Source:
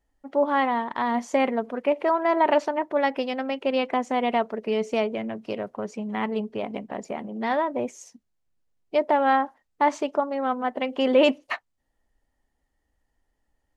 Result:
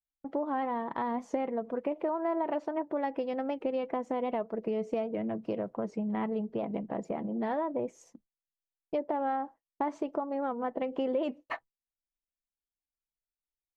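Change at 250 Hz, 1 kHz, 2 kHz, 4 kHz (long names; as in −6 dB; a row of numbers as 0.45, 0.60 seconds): −5.5, −10.0, −14.5, −18.5 decibels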